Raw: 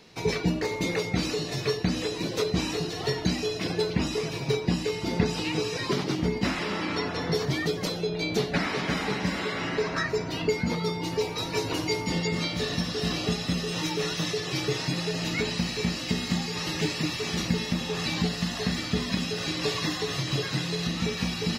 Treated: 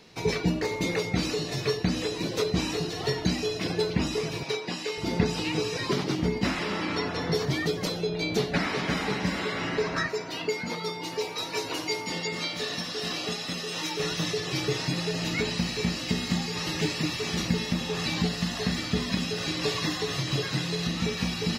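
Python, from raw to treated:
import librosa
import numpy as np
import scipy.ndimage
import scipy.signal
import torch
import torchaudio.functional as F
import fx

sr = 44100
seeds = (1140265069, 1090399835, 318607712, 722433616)

y = fx.weighting(x, sr, curve='A', at=(4.43, 4.98))
y = fx.highpass(y, sr, hz=480.0, slope=6, at=(10.08, 14.0))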